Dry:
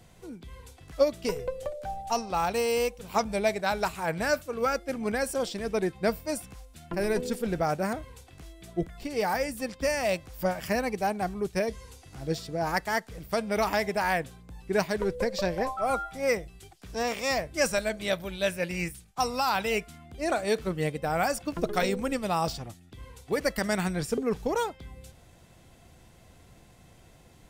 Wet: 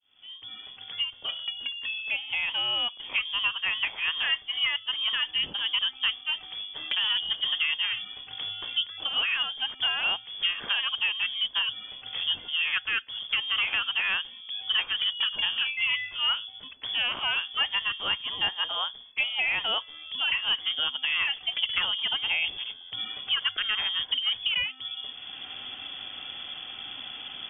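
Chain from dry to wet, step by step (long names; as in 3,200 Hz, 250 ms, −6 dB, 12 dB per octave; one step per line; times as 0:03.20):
fade in at the beginning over 4.22 s
voice inversion scrambler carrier 3,400 Hz
multiband upward and downward compressor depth 70%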